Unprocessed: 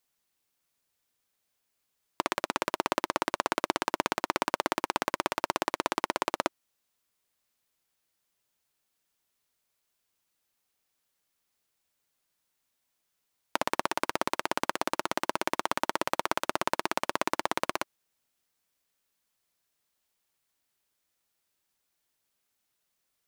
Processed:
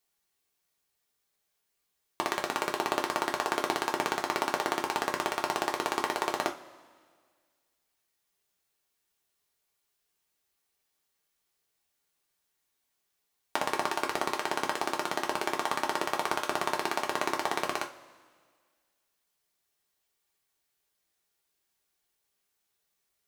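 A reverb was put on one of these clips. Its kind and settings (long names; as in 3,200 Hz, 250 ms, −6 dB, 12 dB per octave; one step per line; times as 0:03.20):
coupled-rooms reverb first 0.24 s, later 1.8 s, from −21 dB, DRR 0.5 dB
level −2.5 dB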